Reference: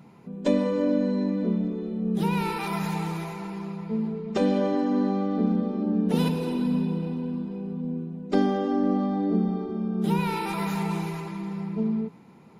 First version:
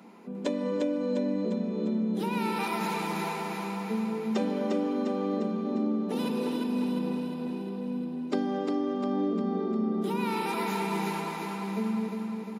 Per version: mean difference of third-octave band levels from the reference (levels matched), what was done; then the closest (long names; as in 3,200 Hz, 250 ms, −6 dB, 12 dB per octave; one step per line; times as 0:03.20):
6.0 dB: Butterworth high-pass 200 Hz 48 dB per octave
downward compressor, threshold −30 dBFS, peak gain reduction 12 dB
on a send: repeating echo 352 ms, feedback 57%, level −4.5 dB
on the sum: level +2.5 dB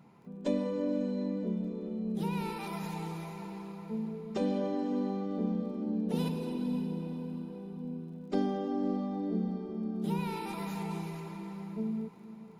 1.5 dB: dynamic equaliser 1,400 Hz, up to −6 dB, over −44 dBFS, Q 0.92
surface crackle 21 per second −49 dBFS
parametric band 980 Hz +2.5 dB 1.4 octaves
on a send: feedback delay with all-pass diffusion 544 ms, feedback 41%, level −14 dB
on the sum: level −8 dB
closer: second